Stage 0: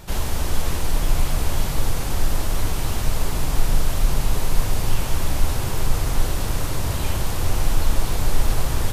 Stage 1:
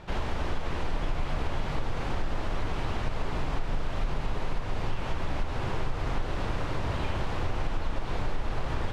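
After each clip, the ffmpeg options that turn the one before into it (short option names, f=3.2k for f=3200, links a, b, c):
-af "lowpass=2.7k,lowshelf=f=160:g=-6.5,acompressor=threshold=-22dB:ratio=6,volume=-1dB"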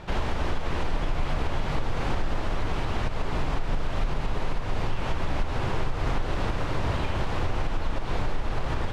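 -af "alimiter=limit=-20.5dB:level=0:latency=1:release=183,volume=4.5dB"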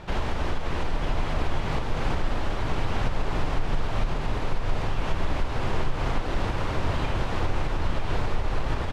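-af "aecho=1:1:951:0.501"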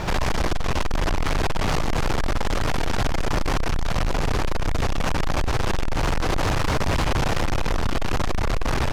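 -af "aeval=exprs='0.237*sin(PI/2*1.78*val(0)/0.237)':c=same,aexciter=amount=2.6:drive=2.7:freq=5k,asoftclip=type=tanh:threshold=-25dB,volume=6dB"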